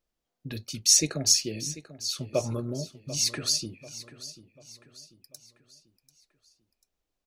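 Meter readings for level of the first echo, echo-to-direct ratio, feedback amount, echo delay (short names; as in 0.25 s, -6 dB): -15.5 dB, -14.5 dB, 43%, 0.741 s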